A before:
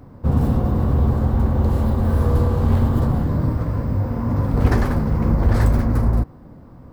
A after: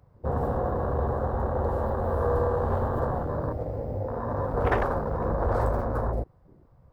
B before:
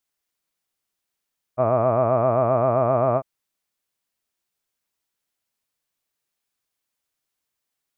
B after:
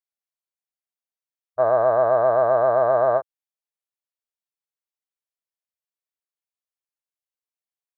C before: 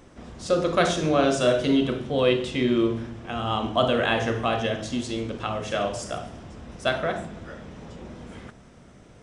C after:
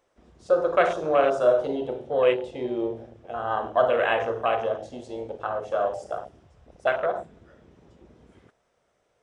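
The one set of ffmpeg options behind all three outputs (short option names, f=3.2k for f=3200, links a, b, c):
-af "afwtdn=0.0355,lowshelf=f=350:t=q:w=1.5:g=-11.5"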